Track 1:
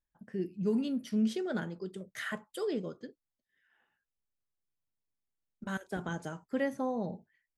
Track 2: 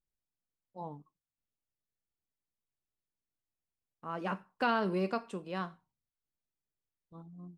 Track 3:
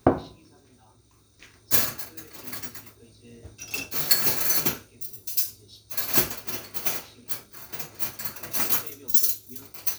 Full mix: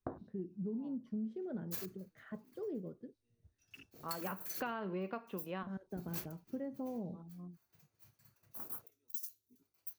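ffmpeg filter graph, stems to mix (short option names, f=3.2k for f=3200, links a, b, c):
-filter_complex "[0:a]lowpass=f=1k:p=1,tiltshelf=f=760:g=7,volume=-9.5dB,asplit=2[a][b];[1:a]lowpass=f=3.3k:w=0.5412,lowpass=f=3.3k:w=1.3066,volume=-1dB[c];[2:a]afwtdn=0.0251,volume=-19.5dB[d];[b]apad=whole_len=334036[e];[c][e]sidechaincompress=threshold=-52dB:ratio=8:attack=45:release=125[f];[a][f][d]amix=inputs=3:normalize=0,acompressor=threshold=-37dB:ratio=5"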